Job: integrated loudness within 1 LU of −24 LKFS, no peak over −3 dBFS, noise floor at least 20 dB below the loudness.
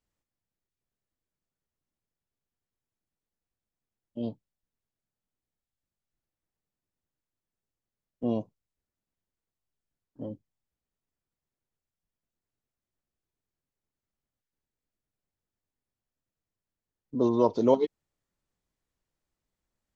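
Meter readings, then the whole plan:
integrated loudness −28.0 LKFS; sample peak −9.5 dBFS; target loudness −24.0 LKFS
→ level +4 dB

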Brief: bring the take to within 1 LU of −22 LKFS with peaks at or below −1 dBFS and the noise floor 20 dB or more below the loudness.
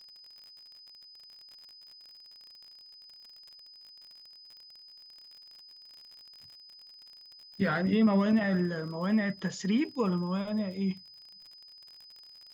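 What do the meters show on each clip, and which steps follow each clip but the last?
crackle rate 48 per second; interfering tone 5,000 Hz; level of the tone −50 dBFS; integrated loudness −29.5 LKFS; sample peak −15.5 dBFS; target loudness −22.0 LKFS
→ click removal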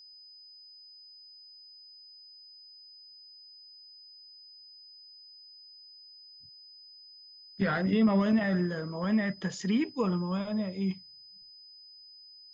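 crackle rate 0 per second; interfering tone 5,000 Hz; level of the tone −50 dBFS
→ notch filter 5,000 Hz, Q 30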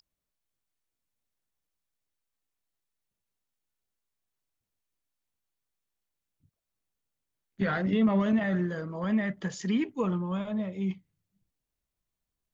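interfering tone none found; integrated loudness −29.5 LKFS; sample peak −15.5 dBFS; target loudness −22.0 LKFS
→ level +7.5 dB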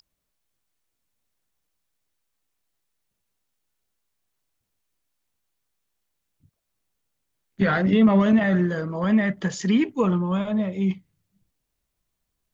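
integrated loudness −22.0 LKFS; sample peak −8.0 dBFS; background noise floor −80 dBFS

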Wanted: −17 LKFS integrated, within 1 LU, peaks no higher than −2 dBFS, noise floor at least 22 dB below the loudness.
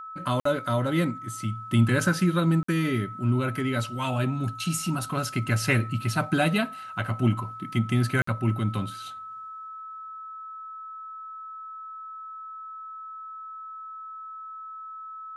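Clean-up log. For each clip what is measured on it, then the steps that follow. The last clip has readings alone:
number of dropouts 3; longest dropout 54 ms; interfering tone 1,300 Hz; level of the tone −37 dBFS; integrated loudness −26.5 LKFS; sample peak −10.0 dBFS; target loudness −17.0 LKFS
→ repair the gap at 0:00.40/0:02.63/0:08.22, 54 ms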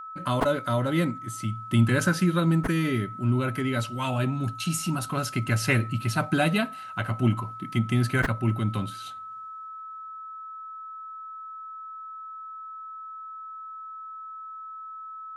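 number of dropouts 0; interfering tone 1,300 Hz; level of the tone −37 dBFS
→ notch filter 1,300 Hz, Q 30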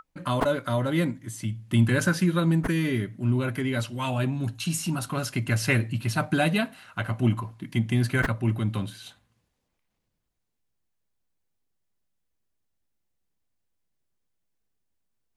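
interfering tone none found; integrated loudness −26.5 LKFS; sample peak −10.5 dBFS; target loudness −17.0 LKFS
→ level +9.5 dB
brickwall limiter −2 dBFS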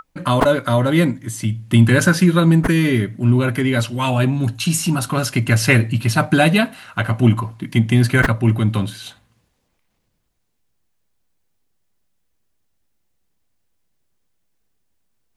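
integrated loudness −17.0 LKFS; sample peak −2.0 dBFS; background noise floor −69 dBFS

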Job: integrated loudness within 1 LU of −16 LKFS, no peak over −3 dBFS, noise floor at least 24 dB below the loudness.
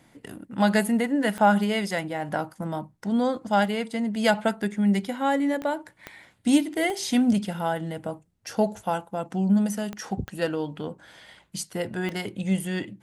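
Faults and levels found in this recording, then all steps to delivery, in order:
number of clicks 7; integrated loudness −26.0 LKFS; sample peak −8.5 dBFS; target loudness −16.0 LKFS
→ click removal
level +10 dB
brickwall limiter −3 dBFS

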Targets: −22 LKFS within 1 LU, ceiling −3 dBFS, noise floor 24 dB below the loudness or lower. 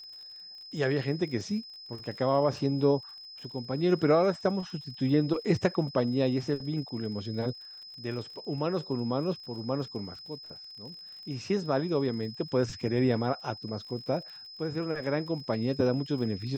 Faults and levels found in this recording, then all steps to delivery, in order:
crackle rate 46 per second; interfering tone 5,100 Hz; level of the tone −44 dBFS; integrated loudness −30.0 LKFS; sample peak −11.5 dBFS; target loudness −22.0 LKFS
→ click removal
notch filter 5,100 Hz, Q 30
level +8 dB

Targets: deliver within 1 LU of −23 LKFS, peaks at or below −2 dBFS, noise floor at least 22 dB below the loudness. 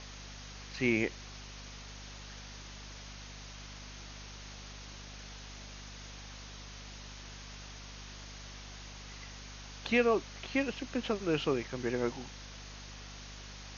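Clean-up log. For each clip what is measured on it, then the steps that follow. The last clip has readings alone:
mains hum 50 Hz; hum harmonics up to 250 Hz; level of the hum −47 dBFS; background noise floor −48 dBFS; target noise floor −61 dBFS; integrated loudness −38.5 LKFS; sample peak −15.0 dBFS; target loudness −23.0 LKFS
→ mains-hum notches 50/100/150/200/250 Hz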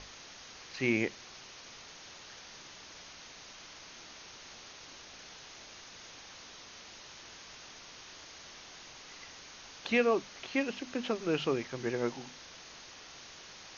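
mains hum none found; background noise floor −51 dBFS; target noise floor −61 dBFS
→ noise reduction from a noise print 10 dB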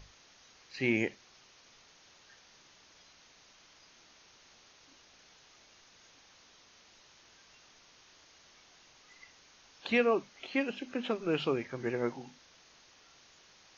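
background noise floor −61 dBFS; integrated loudness −33.0 LKFS; sample peak −15.5 dBFS; target loudness −23.0 LKFS
→ level +10 dB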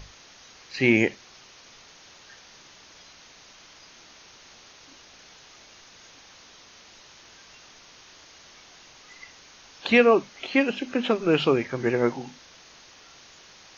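integrated loudness −23.0 LKFS; sample peak −5.5 dBFS; background noise floor −51 dBFS

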